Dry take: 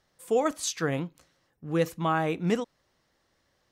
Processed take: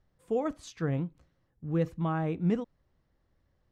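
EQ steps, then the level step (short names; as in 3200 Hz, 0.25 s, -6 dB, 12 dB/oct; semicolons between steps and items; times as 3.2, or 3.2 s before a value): RIAA curve playback; -8.0 dB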